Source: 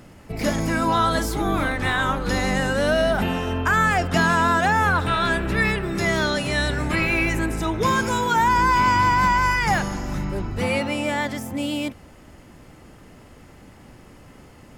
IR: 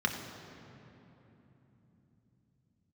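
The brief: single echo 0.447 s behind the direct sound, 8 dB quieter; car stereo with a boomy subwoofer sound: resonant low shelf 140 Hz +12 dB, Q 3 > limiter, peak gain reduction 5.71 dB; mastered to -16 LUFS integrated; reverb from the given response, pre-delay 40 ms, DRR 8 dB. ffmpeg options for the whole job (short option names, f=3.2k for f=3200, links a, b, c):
-filter_complex "[0:a]aecho=1:1:447:0.398,asplit=2[a][b];[1:a]atrim=start_sample=2205,adelay=40[c];[b][c]afir=irnorm=-1:irlink=0,volume=-16.5dB[d];[a][d]amix=inputs=2:normalize=0,lowshelf=f=140:t=q:w=3:g=12,volume=-1.5dB,alimiter=limit=-6dB:level=0:latency=1"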